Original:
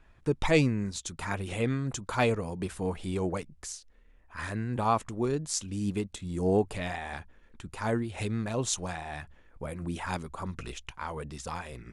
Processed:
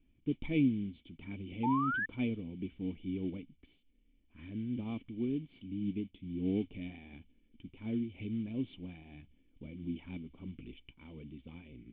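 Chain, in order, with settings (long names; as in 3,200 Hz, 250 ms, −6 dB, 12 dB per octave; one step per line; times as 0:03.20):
noise that follows the level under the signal 12 dB
formant resonators in series i
sound drawn into the spectrogram rise, 0:01.63–0:02.06, 840–1,800 Hz −36 dBFS
level +2 dB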